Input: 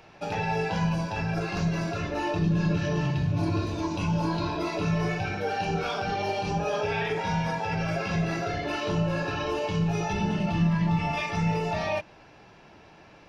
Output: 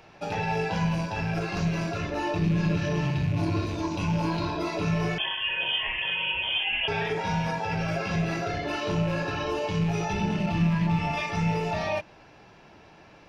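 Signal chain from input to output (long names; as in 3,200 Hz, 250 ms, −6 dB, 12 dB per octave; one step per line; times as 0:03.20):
loose part that buzzes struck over −31 dBFS, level −32 dBFS
0:05.18–0:06.88: voice inversion scrambler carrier 3,300 Hz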